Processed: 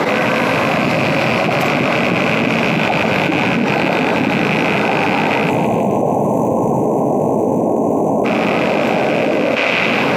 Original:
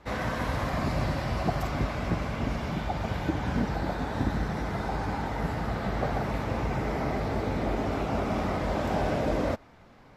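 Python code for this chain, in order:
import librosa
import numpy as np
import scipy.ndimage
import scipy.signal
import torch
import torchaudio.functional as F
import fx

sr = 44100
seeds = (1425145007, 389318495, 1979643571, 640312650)

y = fx.rattle_buzz(x, sr, strikes_db=-34.0, level_db=-23.0)
y = fx.graphic_eq(y, sr, hz=(250, 500, 2000), db=(3, 8, 5))
y = fx.spec_box(y, sr, start_s=5.5, length_s=2.75, low_hz=1100.0, high_hz=5900.0, gain_db=-30)
y = scipy.signal.sosfilt(scipy.signal.butter(4, 140.0, 'highpass', fs=sr, output='sos'), y)
y = fx.peak_eq(y, sr, hz=530.0, db=-2.0, octaves=0.77)
y = fx.notch(y, sr, hz=1800.0, q=12.0)
y = fx.echo_banded(y, sr, ms=157, feedback_pct=56, hz=2900.0, wet_db=-10.5)
y = fx.env_flatten(y, sr, amount_pct=100)
y = y * 10.0 ** (5.0 / 20.0)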